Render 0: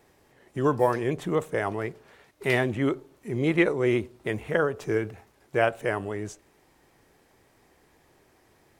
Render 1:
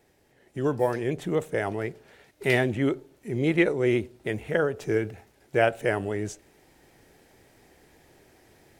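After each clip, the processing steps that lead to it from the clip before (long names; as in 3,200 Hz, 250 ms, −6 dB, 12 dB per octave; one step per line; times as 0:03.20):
parametric band 1,100 Hz −8.5 dB 0.45 octaves
speech leveller 2 s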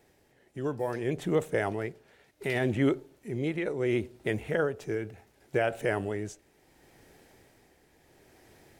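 brickwall limiter −15 dBFS, peak gain reduction 8 dB
amplitude tremolo 0.7 Hz, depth 52%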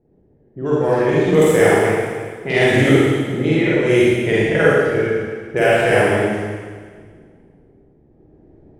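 low-pass that shuts in the quiet parts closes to 320 Hz, open at −23 dBFS
high-shelf EQ 3,800 Hz +10 dB
four-comb reverb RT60 1.7 s, DRR −8.5 dB
level +6 dB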